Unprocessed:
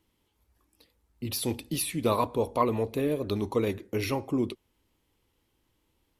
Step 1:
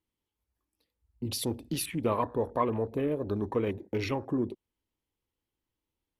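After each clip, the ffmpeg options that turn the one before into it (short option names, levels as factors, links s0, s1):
-filter_complex "[0:a]asplit=2[s0][s1];[s1]acompressor=threshold=0.0224:ratio=6,volume=1.12[s2];[s0][s2]amix=inputs=2:normalize=0,afwtdn=0.0126,volume=0.562"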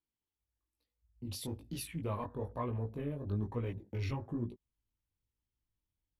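-af "flanger=delay=16.5:depth=4.8:speed=1.1,asubboost=boost=4.5:cutoff=170,volume=0.473"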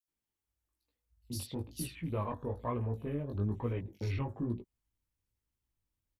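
-filter_complex "[0:a]acrossover=split=3900[s0][s1];[s0]adelay=80[s2];[s2][s1]amix=inputs=2:normalize=0,volume=1.26"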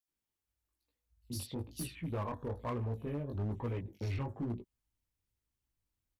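-af "volume=35.5,asoftclip=hard,volume=0.0282,volume=0.891"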